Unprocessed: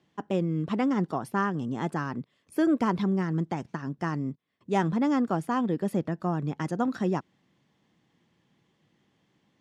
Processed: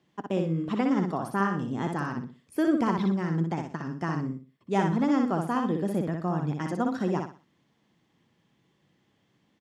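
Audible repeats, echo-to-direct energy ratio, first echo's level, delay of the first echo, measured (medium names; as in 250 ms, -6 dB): 3, -4.0 dB, -4.5 dB, 61 ms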